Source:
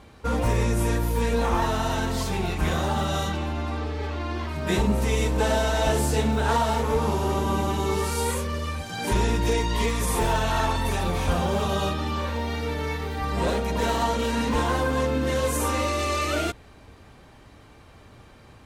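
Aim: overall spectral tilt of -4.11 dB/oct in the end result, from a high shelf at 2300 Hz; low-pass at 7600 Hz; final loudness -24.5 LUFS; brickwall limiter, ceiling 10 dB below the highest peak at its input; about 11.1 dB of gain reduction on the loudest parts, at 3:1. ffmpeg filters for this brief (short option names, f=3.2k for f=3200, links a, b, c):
-af "lowpass=7.6k,highshelf=f=2.3k:g=8.5,acompressor=threshold=-33dB:ratio=3,volume=13.5dB,alimiter=limit=-16dB:level=0:latency=1"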